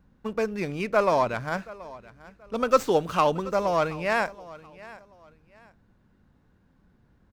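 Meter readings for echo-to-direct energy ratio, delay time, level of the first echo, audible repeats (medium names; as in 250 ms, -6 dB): -19.0 dB, 729 ms, -19.5 dB, 2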